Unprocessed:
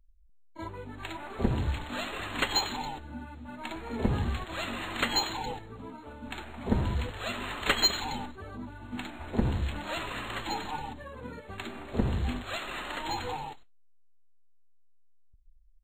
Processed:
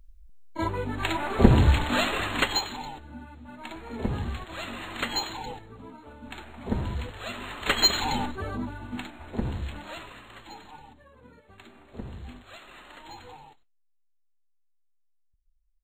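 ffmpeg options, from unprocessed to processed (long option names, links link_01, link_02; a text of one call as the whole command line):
ffmpeg -i in.wav -af "volume=22.5dB,afade=type=out:start_time=1.93:duration=0.7:silence=0.237137,afade=type=in:start_time=7.59:duration=0.85:silence=0.266073,afade=type=out:start_time=8.44:duration=0.68:silence=0.237137,afade=type=out:start_time=9.74:duration=0.47:silence=0.375837" out.wav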